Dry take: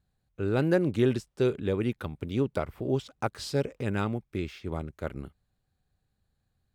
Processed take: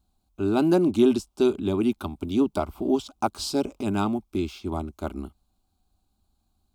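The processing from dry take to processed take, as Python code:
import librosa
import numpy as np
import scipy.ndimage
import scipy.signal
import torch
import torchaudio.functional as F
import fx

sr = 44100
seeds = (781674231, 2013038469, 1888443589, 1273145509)

y = fx.fixed_phaser(x, sr, hz=490.0, stages=6)
y = y * 10.0 ** (8.5 / 20.0)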